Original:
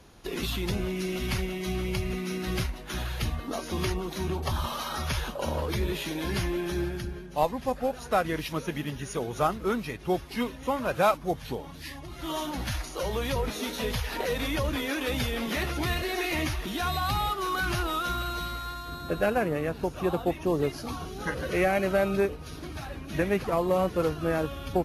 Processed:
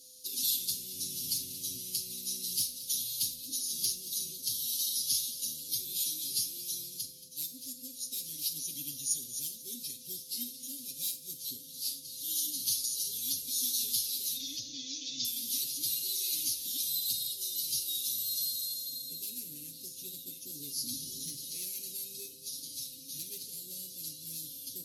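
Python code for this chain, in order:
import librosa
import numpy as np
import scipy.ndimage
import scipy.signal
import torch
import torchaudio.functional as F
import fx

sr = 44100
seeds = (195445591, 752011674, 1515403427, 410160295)

p1 = fx.octave_divider(x, sr, octaves=1, level_db=4.0, at=(0.93, 1.78))
p2 = fx.rider(p1, sr, range_db=4, speed_s=0.5)
p3 = p1 + F.gain(torch.from_numpy(p2), 3.0).numpy()
p4 = fx.low_shelf(p3, sr, hz=490.0, db=9.5, at=(20.77, 21.36))
p5 = np.clip(p4, -10.0 ** (-10.0 / 20.0), 10.0 ** (-10.0 / 20.0))
p6 = fx.steep_lowpass(p5, sr, hz=6700.0, slope=96, at=(14.36, 15.25))
p7 = p6 + fx.echo_single(p6, sr, ms=227, db=-14.5, dry=0)
p8 = p7 + 10.0 ** (-24.0 / 20.0) * np.sin(2.0 * np.pi * 510.0 * np.arange(len(p7)) / sr)
p9 = scipy.signal.sosfilt(scipy.signal.ellip(3, 1.0, 70, [270.0, 4200.0], 'bandstop', fs=sr, output='sos'), p8)
p10 = np.diff(p9, prepend=0.0)
p11 = p10 + 0.82 * np.pad(p10, (int(7.4 * sr / 1000.0), 0))[:len(p10)]
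y = fx.rev_schroeder(p11, sr, rt60_s=0.43, comb_ms=33, drr_db=11.5)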